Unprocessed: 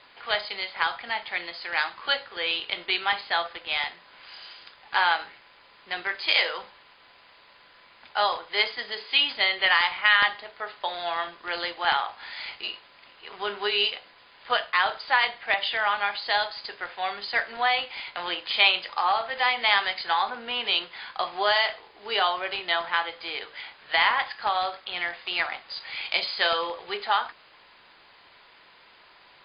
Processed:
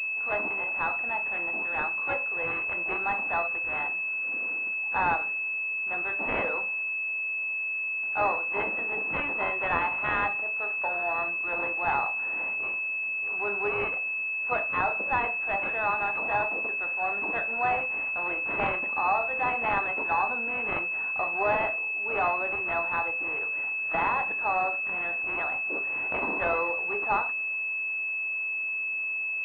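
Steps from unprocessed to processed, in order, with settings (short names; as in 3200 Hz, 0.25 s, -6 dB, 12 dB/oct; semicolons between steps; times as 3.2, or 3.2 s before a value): block floating point 5-bit; transient shaper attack -2 dB, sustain +2 dB; harmoniser +12 st -16 dB; pulse-width modulation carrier 2600 Hz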